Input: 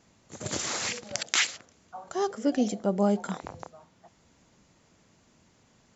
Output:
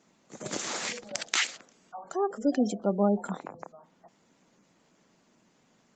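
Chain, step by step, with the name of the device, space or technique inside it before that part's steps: 2.44–3.1 dynamic EQ 4100 Hz, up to +5 dB, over -53 dBFS, Q 1.1; noise-suppressed video call (HPF 160 Hz 24 dB/oct; spectral gate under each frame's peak -25 dB strong; Opus 24 kbps 48000 Hz)

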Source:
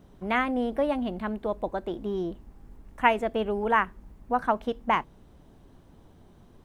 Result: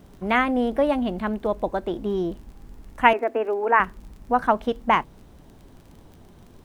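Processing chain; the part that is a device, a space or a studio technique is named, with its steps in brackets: 3.13–3.8 Chebyshev band-pass 250–2600 Hz, order 5; vinyl LP (crackle 28/s -44 dBFS; pink noise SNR 41 dB); gain +5 dB

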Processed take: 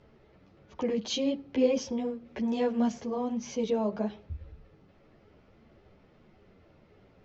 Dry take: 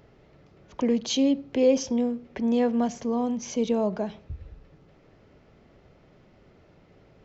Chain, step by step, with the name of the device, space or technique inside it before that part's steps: string-machine ensemble chorus (ensemble effect; LPF 5800 Hz 12 dB/oct); 2.28–2.92 high shelf 5300 Hz +7.5 dB

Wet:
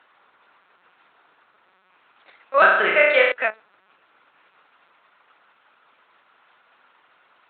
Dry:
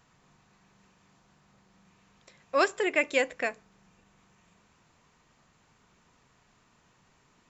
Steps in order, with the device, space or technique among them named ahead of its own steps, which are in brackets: talking toy (LPC vocoder at 8 kHz pitch kept; HPF 550 Hz 12 dB/oct; bell 1400 Hz +8 dB 0.3 oct); 2.6–3.32 flutter echo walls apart 5.8 m, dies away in 0.93 s; gain +8.5 dB

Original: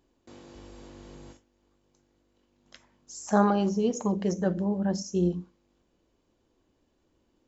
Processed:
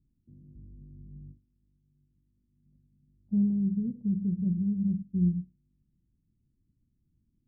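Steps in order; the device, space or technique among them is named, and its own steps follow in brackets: the neighbour's flat through the wall (LPF 200 Hz 24 dB/oct; bell 140 Hz +6.5 dB 0.55 oct); gain +1.5 dB

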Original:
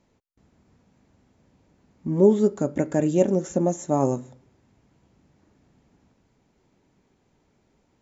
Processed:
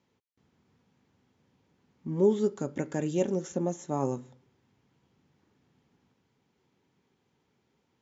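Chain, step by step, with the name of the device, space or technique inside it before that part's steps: car door speaker (speaker cabinet 110–6600 Hz, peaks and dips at 200 Hz -3 dB, 300 Hz -4 dB, 630 Hz -8 dB, 3200 Hz +4 dB); 2.19–3.52 high shelf 5100 Hz +6 dB; gain -5 dB

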